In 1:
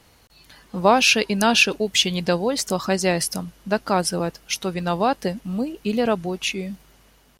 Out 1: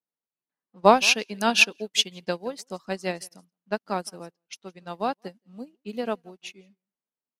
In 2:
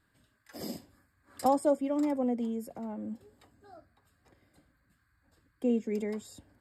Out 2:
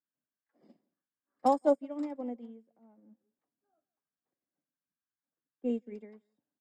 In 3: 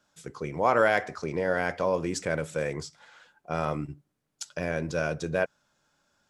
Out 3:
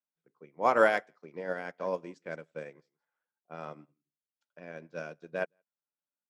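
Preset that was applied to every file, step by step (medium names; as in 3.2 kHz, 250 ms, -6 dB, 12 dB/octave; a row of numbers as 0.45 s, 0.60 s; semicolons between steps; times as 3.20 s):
level-controlled noise filter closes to 1.5 kHz, open at -20 dBFS; high-pass 160 Hz 24 dB/octave; delay 169 ms -18.5 dB; upward expansion 2.5:1, over -41 dBFS; trim +1.5 dB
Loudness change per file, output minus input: -3.0 LU, 0.0 LU, -3.0 LU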